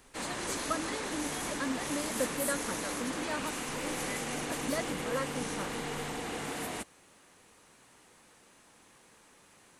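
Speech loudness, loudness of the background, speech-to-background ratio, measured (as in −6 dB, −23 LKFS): −39.5 LKFS, −35.5 LKFS, −4.0 dB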